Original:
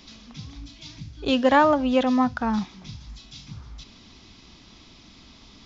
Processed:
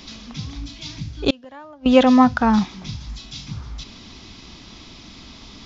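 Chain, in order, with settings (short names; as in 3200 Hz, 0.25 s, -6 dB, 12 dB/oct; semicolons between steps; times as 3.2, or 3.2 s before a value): 1.3–1.86 flipped gate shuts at -16 dBFS, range -31 dB; gain +8 dB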